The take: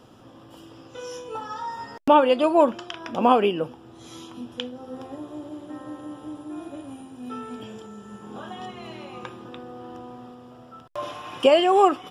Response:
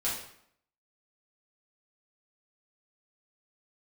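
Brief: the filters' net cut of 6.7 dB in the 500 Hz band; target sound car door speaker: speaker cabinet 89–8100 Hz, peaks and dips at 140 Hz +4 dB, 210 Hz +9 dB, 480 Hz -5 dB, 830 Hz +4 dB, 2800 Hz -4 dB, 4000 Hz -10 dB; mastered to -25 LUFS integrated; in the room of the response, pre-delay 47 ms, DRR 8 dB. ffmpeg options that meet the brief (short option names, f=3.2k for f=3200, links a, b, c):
-filter_complex "[0:a]equalizer=f=500:t=o:g=-7.5,asplit=2[a][b];[1:a]atrim=start_sample=2205,adelay=47[c];[b][c]afir=irnorm=-1:irlink=0,volume=-14dB[d];[a][d]amix=inputs=2:normalize=0,highpass=89,equalizer=f=140:t=q:w=4:g=4,equalizer=f=210:t=q:w=4:g=9,equalizer=f=480:t=q:w=4:g=-5,equalizer=f=830:t=q:w=4:g=4,equalizer=f=2.8k:t=q:w=4:g=-4,equalizer=f=4k:t=q:w=4:g=-10,lowpass=f=8.1k:w=0.5412,lowpass=f=8.1k:w=1.3066"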